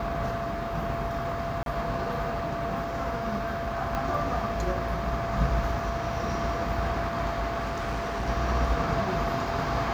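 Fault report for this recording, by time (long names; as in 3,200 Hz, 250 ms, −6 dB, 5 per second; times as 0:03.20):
whistle 680 Hz −32 dBFS
0:01.63–0:01.66: drop-out 32 ms
0:03.95: click −18 dBFS
0:07.59–0:08.29: clipping −26.5 dBFS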